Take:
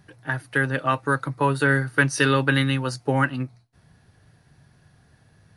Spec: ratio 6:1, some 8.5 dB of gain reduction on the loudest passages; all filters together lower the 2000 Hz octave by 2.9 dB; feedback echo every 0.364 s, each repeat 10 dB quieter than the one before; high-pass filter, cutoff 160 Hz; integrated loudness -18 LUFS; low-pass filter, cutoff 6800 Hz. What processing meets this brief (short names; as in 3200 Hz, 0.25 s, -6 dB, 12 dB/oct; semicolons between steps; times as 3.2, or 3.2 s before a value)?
HPF 160 Hz; LPF 6800 Hz; bell 2000 Hz -4 dB; compressor 6:1, threshold -26 dBFS; feedback echo 0.364 s, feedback 32%, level -10 dB; gain +13.5 dB